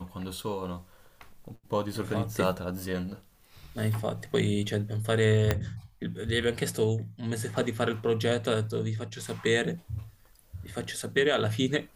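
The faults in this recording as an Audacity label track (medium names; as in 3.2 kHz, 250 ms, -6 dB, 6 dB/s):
5.510000	5.510000	pop -10 dBFS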